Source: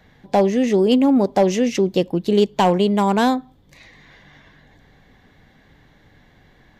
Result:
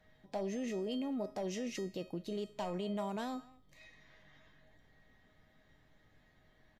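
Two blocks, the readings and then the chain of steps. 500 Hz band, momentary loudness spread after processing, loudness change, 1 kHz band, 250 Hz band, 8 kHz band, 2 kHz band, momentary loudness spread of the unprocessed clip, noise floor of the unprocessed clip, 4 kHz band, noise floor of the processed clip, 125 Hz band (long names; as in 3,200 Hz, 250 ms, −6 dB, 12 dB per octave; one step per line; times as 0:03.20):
−22.0 dB, 8 LU, −22.0 dB, −23.5 dB, −21.5 dB, −16.5 dB, −20.5 dB, 5 LU, −54 dBFS, −19.5 dB, −68 dBFS, −21.0 dB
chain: brickwall limiter −15.5 dBFS, peak gain reduction 9.5 dB
tuned comb filter 630 Hz, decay 0.43 s, mix 90%
far-end echo of a speakerphone 210 ms, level −21 dB
level +2.5 dB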